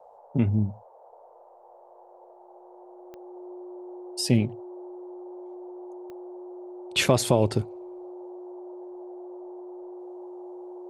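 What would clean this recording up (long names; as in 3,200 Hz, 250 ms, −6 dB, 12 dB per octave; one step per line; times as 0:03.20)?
click removal
notch filter 360 Hz, Q 30
noise reduction from a noise print 21 dB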